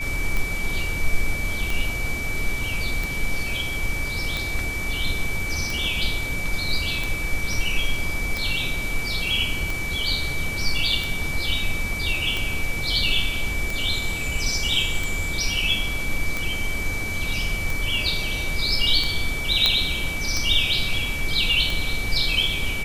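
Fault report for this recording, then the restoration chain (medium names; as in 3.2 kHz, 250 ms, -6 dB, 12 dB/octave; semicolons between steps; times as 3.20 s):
tick 45 rpm
whine 2.3 kHz -28 dBFS
19.66 s: pop -4 dBFS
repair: de-click; band-stop 2.3 kHz, Q 30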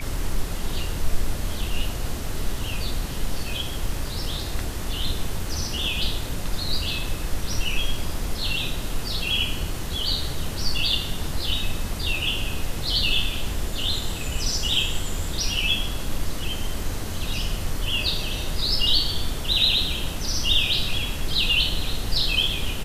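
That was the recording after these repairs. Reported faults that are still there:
nothing left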